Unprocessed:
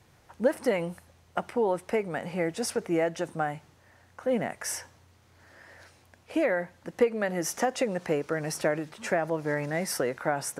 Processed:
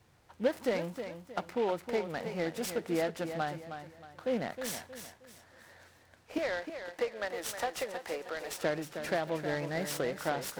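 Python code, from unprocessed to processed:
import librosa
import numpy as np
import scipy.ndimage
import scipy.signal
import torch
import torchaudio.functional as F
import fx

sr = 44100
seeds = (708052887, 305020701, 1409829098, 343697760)

y = fx.highpass(x, sr, hz=560.0, slope=12, at=(6.38, 8.64))
y = fx.echo_feedback(y, sr, ms=314, feedback_pct=35, wet_db=-9)
y = fx.noise_mod_delay(y, sr, seeds[0], noise_hz=2100.0, depth_ms=0.033)
y = y * 10.0 ** (-5.0 / 20.0)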